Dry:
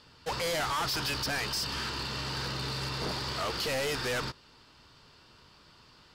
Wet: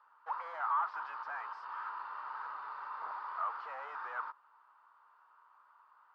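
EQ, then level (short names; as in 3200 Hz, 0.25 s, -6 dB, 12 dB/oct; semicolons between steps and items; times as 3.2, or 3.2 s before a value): Butterworth band-pass 1100 Hz, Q 2.2; +1.5 dB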